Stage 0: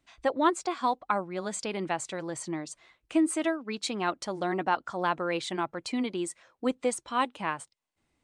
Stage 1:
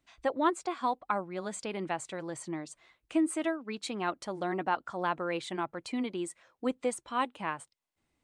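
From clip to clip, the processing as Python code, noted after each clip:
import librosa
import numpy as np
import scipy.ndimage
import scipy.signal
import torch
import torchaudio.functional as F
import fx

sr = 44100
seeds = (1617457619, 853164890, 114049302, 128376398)

y = fx.dynamic_eq(x, sr, hz=5400.0, q=1.2, threshold_db=-51.0, ratio=4.0, max_db=-5)
y = y * 10.0 ** (-3.0 / 20.0)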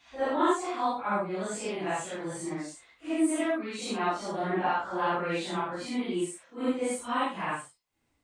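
y = fx.phase_scramble(x, sr, seeds[0], window_ms=200)
y = y * 10.0 ** (3.5 / 20.0)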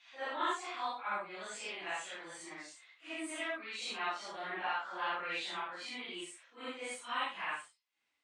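y = fx.bandpass_q(x, sr, hz=2800.0, q=0.92)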